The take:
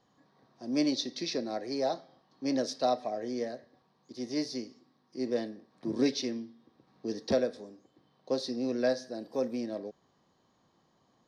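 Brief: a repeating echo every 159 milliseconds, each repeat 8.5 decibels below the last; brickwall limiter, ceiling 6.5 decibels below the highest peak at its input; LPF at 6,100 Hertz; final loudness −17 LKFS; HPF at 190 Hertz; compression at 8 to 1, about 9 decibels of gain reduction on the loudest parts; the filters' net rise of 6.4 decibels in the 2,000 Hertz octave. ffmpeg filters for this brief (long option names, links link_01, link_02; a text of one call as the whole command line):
ffmpeg -i in.wav -af "highpass=190,lowpass=6100,equalizer=frequency=2000:width_type=o:gain=8,acompressor=threshold=-31dB:ratio=8,alimiter=level_in=4dB:limit=-24dB:level=0:latency=1,volume=-4dB,aecho=1:1:159|318|477|636:0.376|0.143|0.0543|0.0206,volume=22dB" out.wav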